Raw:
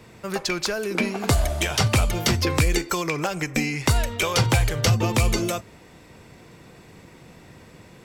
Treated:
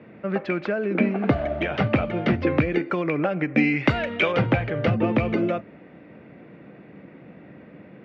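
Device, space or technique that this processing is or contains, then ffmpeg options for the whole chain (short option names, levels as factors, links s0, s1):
bass cabinet: -filter_complex "[0:a]highpass=f=88:w=0.5412,highpass=f=88:w=1.3066,equalizer=f=100:t=q:w=4:g=-9,equalizer=f=200:t=q:w=4:g=6,equalizer=f=290:t=q:w=4:g=7,equalizer=f=580:t=q:w=4:g=6,equalizer=f=980:t=q:w=4:g=-7,lowpass=f=2400:w=0.5412,lowpass=f=2400:w=1.3066,asettb=1/sr,asplit=3[s0][s1][s2];[s0]atrim=end=3.574[s3];[s1]atrim=start=3.57:end=4.32,asetpts=PTS-STARTPTS,afade=t=in:d=0.004:c=qsin,afade=t=out:st=0.746:d=0.004:c=qsin,highshelf=f=2000:g=11.5[s4];[s2]atrim=start=4.316[s5];[s3][s4]acrossfade=d=0.004:c1=hsin:c2=qsin[s6];[s6][s5]acrossfade=d=0.004:c1=qsin:c2=hsin"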